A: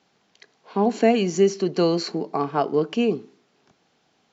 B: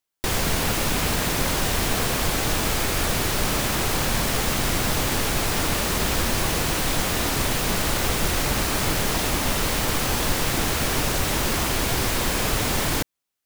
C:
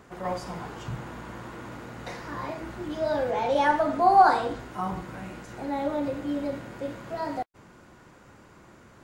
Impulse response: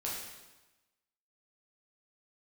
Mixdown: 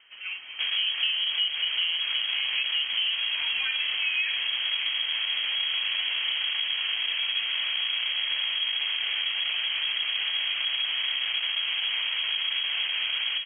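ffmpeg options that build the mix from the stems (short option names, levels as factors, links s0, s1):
-filter_complex "[0:a]lowpass=1100,lowshelf=f=460:g=6.5,volume=0.562[s0];[1:a]lowpass=f=1300:w=0.5412,lowpass=f=1300:w=1.3066,asoftclip=type=tanh:threshold=0.0355,adelay=350,volume=1.33,asplit=2[s1][s2];[s2]volume=0.562[s3];[2:a]volume=0.562[s4];[3:a]atrim=start_sample=2205[s5];[s3][s5]afir=irnorm=-1:irlink=0[s6];[s0][s1][s4][s6]amix=inputs=4:normalize=0,lowpass=f=2800:t=q:w=0.5098,lowpass=f=2800:t=q:w=0.6013,lowpass=f=2800:t=q:w=0.9,lowpass=f=2800:t=q:w=2.563,afreqshift=-3300,acompressor=threshold=0.0562:ratio=4"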